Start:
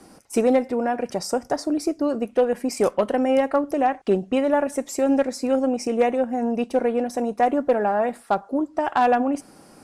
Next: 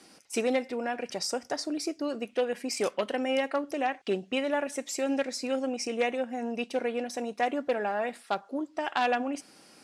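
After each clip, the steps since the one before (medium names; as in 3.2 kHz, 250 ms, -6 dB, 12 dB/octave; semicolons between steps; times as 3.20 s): frequency weighting D; trim -8.5 dB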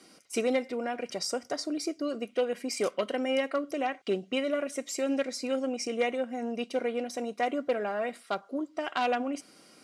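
comb of notches 860 Hz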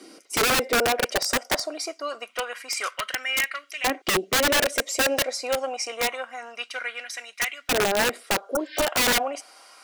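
LFO high-pass saw up 0.26 Hz 300–2400 Hz; integer overflow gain 22.5 dB; spectral replace 8.50–8.79 s, 1.5–5.4 kHz both; trim +6.5 dB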